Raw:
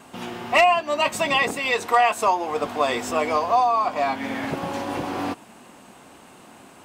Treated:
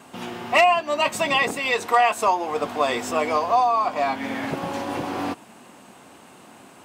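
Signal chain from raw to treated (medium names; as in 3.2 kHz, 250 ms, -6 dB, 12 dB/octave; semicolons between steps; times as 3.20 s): high-pass 76 Hz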